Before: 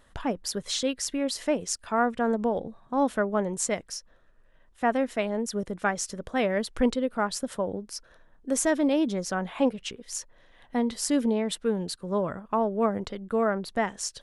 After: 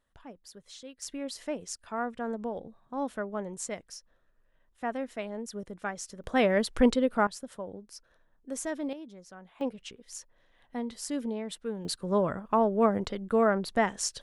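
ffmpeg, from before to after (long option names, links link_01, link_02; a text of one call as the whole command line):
ffmpeg -i in.wav -af "asetnsamples=nb_out_samples=441:pad=0,asendcmd='1.02 volume volume -8.5dB;6.24 volume volume 1.5dB;7.27 volume volume -10dB;8.93 volume volume -19.5dB;9.61 volume volume -8.5dB;11.85 volume volume 1dB',volume=-18.5dB" out.wav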